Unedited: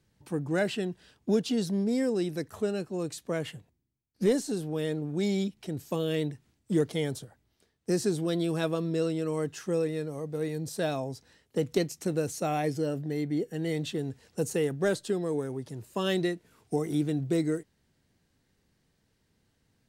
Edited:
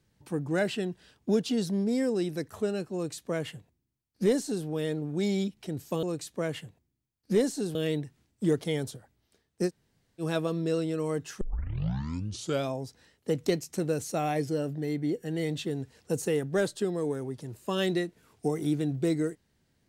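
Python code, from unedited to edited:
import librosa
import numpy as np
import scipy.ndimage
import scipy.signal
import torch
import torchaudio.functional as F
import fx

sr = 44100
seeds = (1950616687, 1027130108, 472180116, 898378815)

y = fx.edit(x, sr, fx.duplicate(start_s=2.94, length_s=1.72, to_s=6.03),
    fx.room_tone_fill(start_s=7.96, length_s=0.53, crossfade_s=0.06),
    fx.tape_start(start_s=9.69, length_s=1.31), tone=tone)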